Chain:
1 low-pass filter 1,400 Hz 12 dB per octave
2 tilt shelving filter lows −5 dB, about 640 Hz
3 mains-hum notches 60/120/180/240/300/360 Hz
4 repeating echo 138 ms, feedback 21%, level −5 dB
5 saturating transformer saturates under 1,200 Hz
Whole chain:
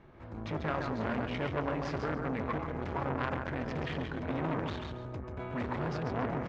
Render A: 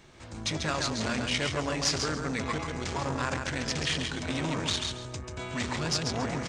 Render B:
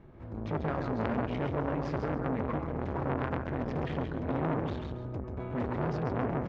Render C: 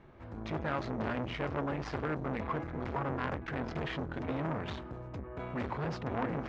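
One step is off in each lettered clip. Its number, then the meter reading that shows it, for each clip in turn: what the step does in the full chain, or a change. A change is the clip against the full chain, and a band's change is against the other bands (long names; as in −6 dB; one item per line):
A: 1, 4 kHz band +16.0 dB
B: 2, 4 kHz band −7.5 dB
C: 4, change in integrated loudness −1.5 LU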